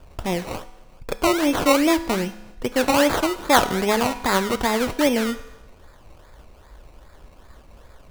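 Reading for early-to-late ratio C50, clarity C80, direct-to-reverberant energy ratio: 14.0 dB, 16.0 dB, 11.0 dB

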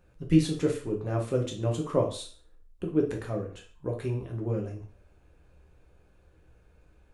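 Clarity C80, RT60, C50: 14.0 dB, 0.45 s, 8.5 dB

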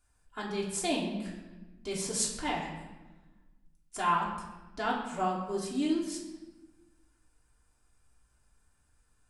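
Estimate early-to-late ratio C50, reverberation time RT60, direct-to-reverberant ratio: 4.5 dB, 1.1 s, -4.5 dB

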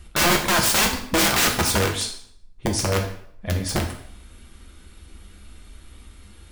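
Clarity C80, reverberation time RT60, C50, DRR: 11.0 dB, 0.65 s, 8.0 dB, 1.5 dB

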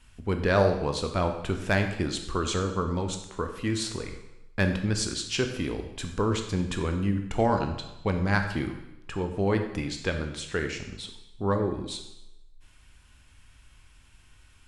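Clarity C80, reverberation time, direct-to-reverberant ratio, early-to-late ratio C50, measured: 9.5 dB, 0.90 s, 5.0 dB, 7.5 dB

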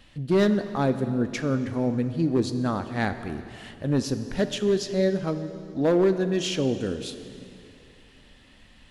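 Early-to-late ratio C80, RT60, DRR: 11.0 dB, 2.7 s, 9.5 dB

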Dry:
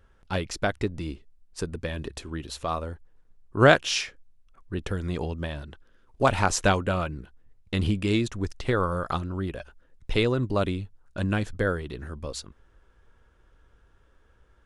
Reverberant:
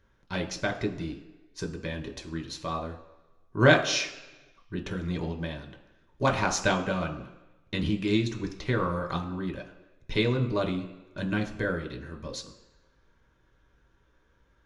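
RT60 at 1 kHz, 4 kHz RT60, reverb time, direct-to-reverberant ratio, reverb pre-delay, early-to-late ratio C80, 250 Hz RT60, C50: 1.0 s, 1.1 s, 1.1 s, 2.5 dB, 3 ms, 13.0 dB, 1.0 s, 10.5 dB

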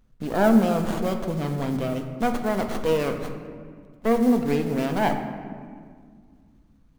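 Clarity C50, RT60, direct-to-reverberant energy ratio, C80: 7.5 dB, 1.9 s, 5.0 dB, 8.5 dB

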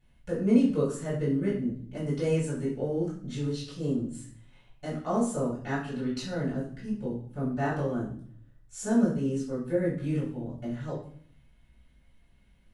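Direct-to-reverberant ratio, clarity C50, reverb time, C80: -10.5 dB, 4.5 dB, 0.55 s, 9.0 dB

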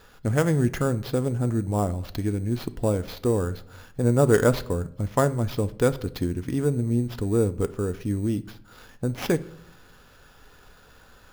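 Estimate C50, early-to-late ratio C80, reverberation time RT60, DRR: 18.0 dB, 22.0 dB, 0.70 s, 11.5 dB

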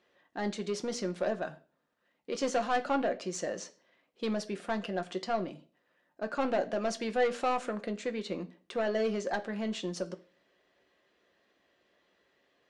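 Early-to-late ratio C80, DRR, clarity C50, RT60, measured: 22.0 dB, 6.0 dB, 17.5 dB, 0.40 s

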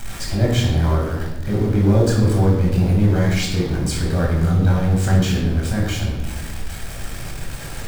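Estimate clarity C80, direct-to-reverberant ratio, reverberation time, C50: 5.0 dB, -4.0 dB, 1.1 s, 2.0 dB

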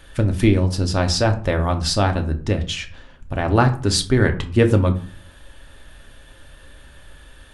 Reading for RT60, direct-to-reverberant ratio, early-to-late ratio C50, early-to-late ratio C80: 0.45 s, 5.0 dB, 13.5 dB, 18.5 dB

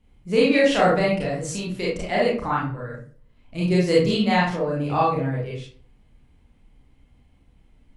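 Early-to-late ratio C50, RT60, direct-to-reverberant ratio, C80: 2.0 dB, 0.45 s, -5.5 dB, 8.0 dB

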